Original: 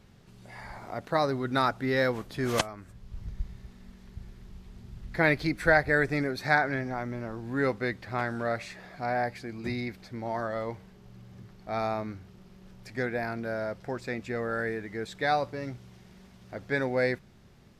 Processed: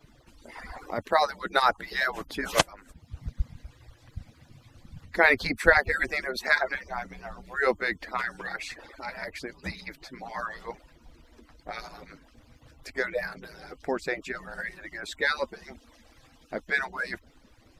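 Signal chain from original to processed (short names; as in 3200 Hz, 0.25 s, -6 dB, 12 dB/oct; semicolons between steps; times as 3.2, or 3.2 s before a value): median-filter separation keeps percussive; gain +6 dB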